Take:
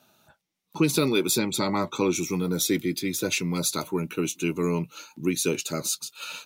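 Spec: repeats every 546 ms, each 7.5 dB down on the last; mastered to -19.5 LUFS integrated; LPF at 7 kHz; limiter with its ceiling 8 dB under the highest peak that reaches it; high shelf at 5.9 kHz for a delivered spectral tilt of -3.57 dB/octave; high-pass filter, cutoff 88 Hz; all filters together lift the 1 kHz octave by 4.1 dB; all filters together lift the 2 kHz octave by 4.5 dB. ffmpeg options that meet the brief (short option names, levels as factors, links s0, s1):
-af "highpass=88,lowpass=7000,equalizer=f=1000:t=o:g=3.5,equalizer=f=2000:t=o:g=4.5,highshelf=f=5900:g=4.5,alimiter=limit=0.178:level=0:latency=1,aecho=1:1:546|1092|1638|2184|2730:0.422|0.177|0.0744|0.0312|0.0131,volume=2.11"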